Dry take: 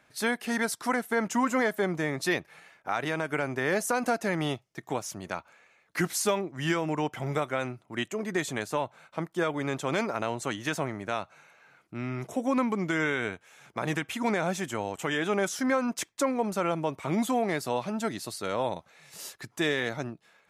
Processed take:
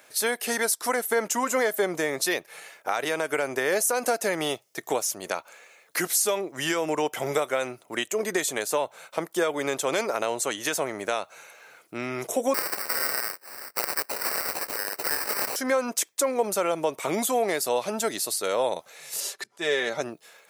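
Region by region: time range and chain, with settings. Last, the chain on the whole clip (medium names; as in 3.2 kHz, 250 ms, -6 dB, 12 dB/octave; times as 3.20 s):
12.54–15.56 s: square wave that keeps the level + steep high-pass 1.2 kHz + sample-rate reducer 3.4 kHz
19.20–20.01 s: comb 5.1 ms, depth 48% + slow attack 156 ms + distance through air 51 m
whole clip: RIAA curve recording; compression 2:1, threshold -34 dBFS; peaking EQ 480 Hz +9 dB 1.1 oct; trim +5 dB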